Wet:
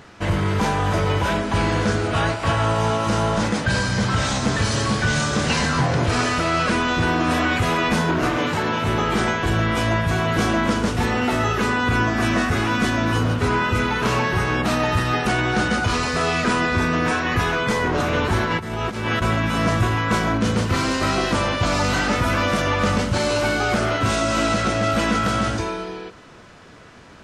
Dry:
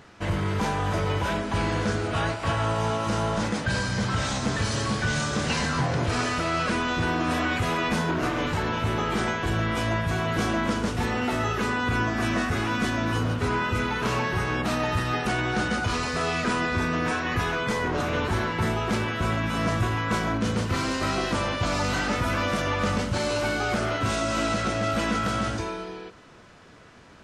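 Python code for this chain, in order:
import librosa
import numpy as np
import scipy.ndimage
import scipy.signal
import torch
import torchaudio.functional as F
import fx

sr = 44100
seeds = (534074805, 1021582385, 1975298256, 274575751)

y = fx.highpass(x, sr, hz=130.0, slope=12, at=(8.37, 8.87))
y = fx.over_compress(y, sr, threshold_db=-29.0, ratio=-0.5, at=(18.45, 19.22))
y = y * 10.0 ** (5.5 / 20.0)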